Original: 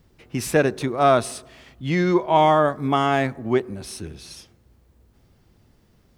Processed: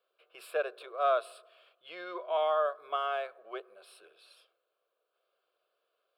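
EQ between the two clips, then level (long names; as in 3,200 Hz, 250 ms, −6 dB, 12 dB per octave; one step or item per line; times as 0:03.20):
high-pass filter 530 Hz 24 dB per octave
high-shelf EQ 4,300 Hz −11.5 dB
phaser with its sweep stopped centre 1,300 Hz, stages 8
−7.5 dB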